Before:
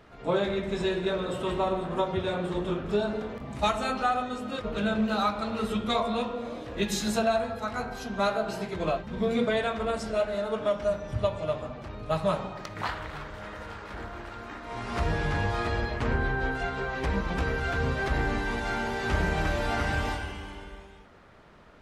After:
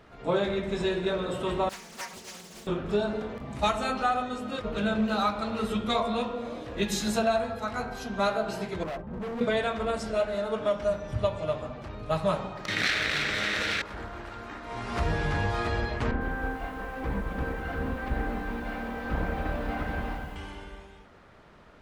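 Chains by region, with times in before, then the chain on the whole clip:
1.69–2.67 sample sorter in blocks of 16 samples + metallic resonator 220 Hz, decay 0.22 s, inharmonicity 0.008 + Doppler distortion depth 0.76 ms
8.83–9.41 LPF 1100 Hz + hard clip -32.5 dBFS
12.68–13.82 minimum comb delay 0.52 ms + weighting filter D + fast leveller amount 70%
16.11–20.36 minimum comb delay 3.9 ms + tape spacing loss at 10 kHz 34 dB + lo-fi delay 98 ms, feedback 80%, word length 8-bit, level -15 dB
whole clip: dry

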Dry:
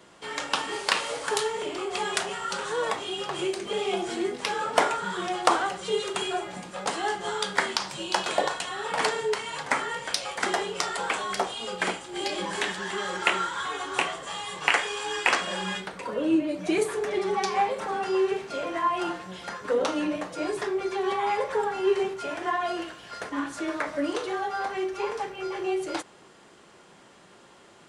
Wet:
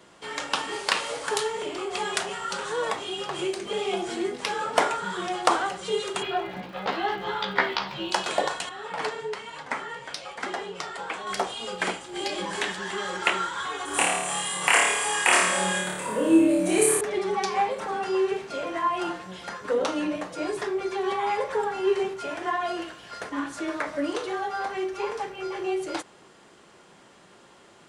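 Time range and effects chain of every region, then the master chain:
6.2–8.1 LPF 4000 Hz 24 dB/oct + doubler 15 ms -2.5 dB + crackle 230/s -45 dBFS
8.69–11.27 high shelf 6800 Hz -11.5 dB + flange 1.1 Hz, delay 3.1 ms, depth 4.6 ms, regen +67%
13.85–17.01 resonant high shelf 6800 Hz +11.5 dB, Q 1.5 + flutter echo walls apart 4.7 m, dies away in 0.89 s
whole clip: dry

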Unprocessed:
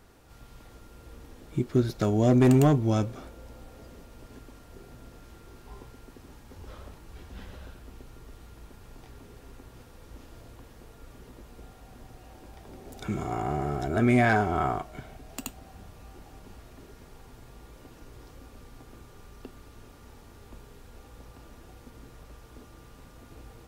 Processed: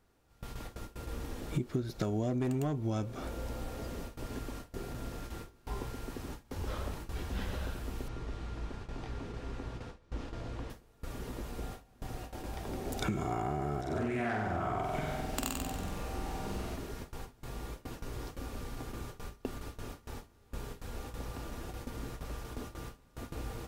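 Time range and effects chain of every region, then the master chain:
8.08–10.7 air absorption 98 m + doubler 18 ms -12 dB
13.81–16.76 compressor 4:1, threshold -35 dBFS + flutter echo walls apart 8 m, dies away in 1 s + Doppler distortion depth 0.24 ms
whole clip: gate with hold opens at -39 dBFS; compressor 16:1, threshold -37 dBFS; gain +7.5 dB

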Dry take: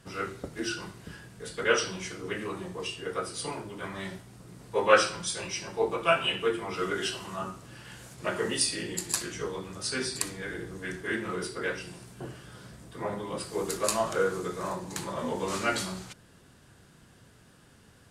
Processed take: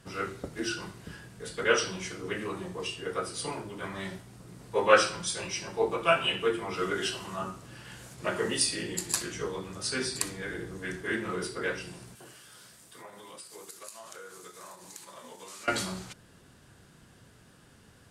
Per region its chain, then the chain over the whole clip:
12.15–15.68 tilt +3.5 dB/oct + gate -36 dBFS, range -6 dB + compressor, threshold -44 dBFS
whole clip: dry

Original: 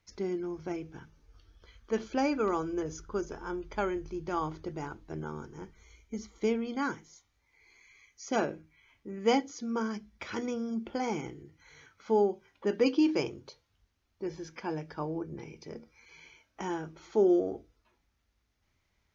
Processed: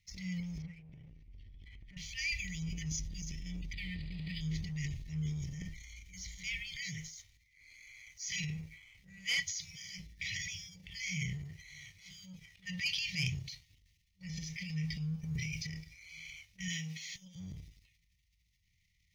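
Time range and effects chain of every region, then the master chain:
0.62–1.97 LPF 1800 Hz + compressor 5:1, threshold -52 dBFS
3.73–4.41 level-crossing sampler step -47.5 dBFS + brick-wall FIR low-pass 5000 Hz + notch comb 530 Hz
15.14–15.67 high shelf 3300 Hz +7 dB + negative-ratio compressor -39 dBFS, ratio -0.5
16.68–17.36 Bessel high-pass 280 Hz, order 8 + negative-ratio compressor -34 dBFS
whole clip: FFT band-reject 190–1800 Hz; transient shaper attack -4 dB, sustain +9 dB; sample leveller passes 1; gain +2.5 dB

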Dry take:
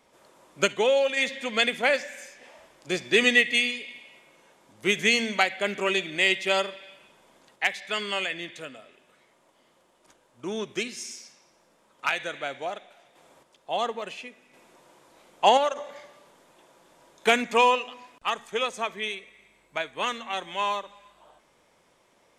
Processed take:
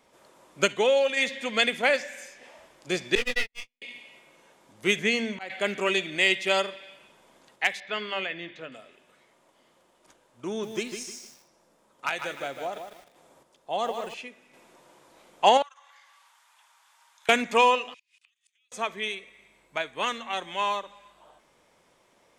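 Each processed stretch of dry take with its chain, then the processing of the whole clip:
3.15–3.82 half-wave gain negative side -12 dB + gate -24 dBFS, range -52 dB + detuned doubles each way 43 cents
4.99–5.5 high shelf 2800 Hz -9.5 dB + auto swell 0.207 s
7.8–8.72 air absorption 200 m + notches 50/100/150/200/250/300/350/400 Hz
10.48–14.14 bell 2500 Hz -4.5 dB 2.1 oct + lo-fi delay 0.152 s, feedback 35%, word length 8-bit, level -7 dB
15.62–17.29 steep high-pass 930 Hz + compressor 3:1, threshold -54 dBFS + frequency shift -30 Hz
17.94–18.72 Chebyshev band-pass 2300–9900 Hz, order 3 + compressor 16:1, threshold -39 dBFS + flipped gate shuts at -44 dBFS, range -28 dB
whole clip: dry

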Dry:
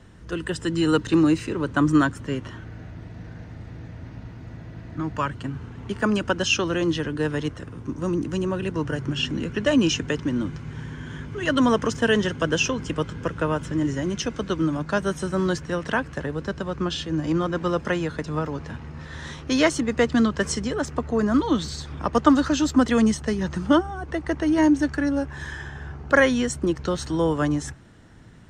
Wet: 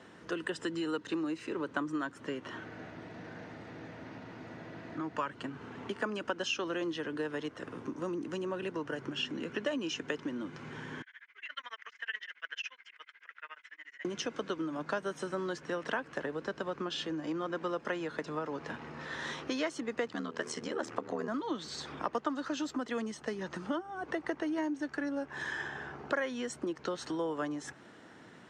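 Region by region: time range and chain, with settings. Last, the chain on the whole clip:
11.02–14.05 ladder band-pass 2200 Hz, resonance 65% + tremolo 14 Hz, depth 100%
20.07–21.28 notches 50/100/150/200/250/300/350/400/450 Hz + upward compressor, threshold -24 dBFS + ring modulator 39 Hz
whole clip: compressor 6:1, threshold -32 dBFS; HPF 310 Hz 12 dB/oct; high shelf 6900 Hz -11.5 dB; gain +2 dB

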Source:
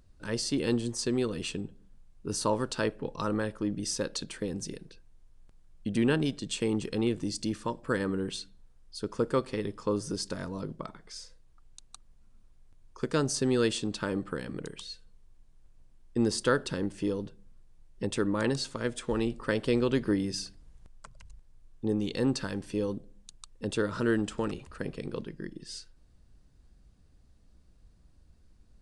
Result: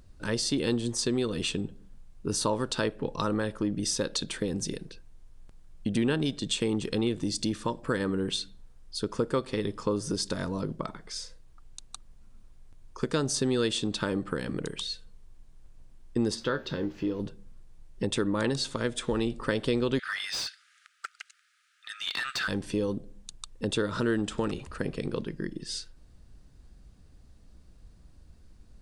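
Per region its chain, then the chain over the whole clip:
16.34–17.19 added noise pink -57 dBFS + running mean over 5 samples + resonator 76 Hz, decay 0.2 s, mix 70%
19.99–22.48 brick-wall FIR high-pass 1200 Hz + overdrive pedal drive 22 dB, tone 1600 Hz, clips at -22 dBFS
whole clip: dynamic EQ 3600 Hz, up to +7 dB, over -60 dBFS, Q 6.8; compressor 2:1, threshold -34 dBFS; gain +6 dB

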